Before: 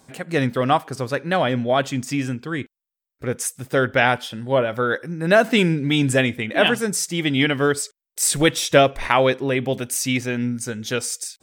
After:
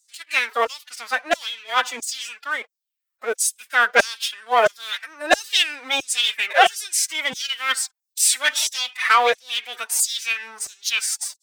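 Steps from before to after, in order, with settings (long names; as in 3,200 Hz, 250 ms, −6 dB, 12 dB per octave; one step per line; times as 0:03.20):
leveller curve on the samples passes 2
auto-filter high-pass saw down 1.5 Hz 600–6,900 Hz
phase-vocoder pitch shift with formants kept +10.5 semitones
level −4 dB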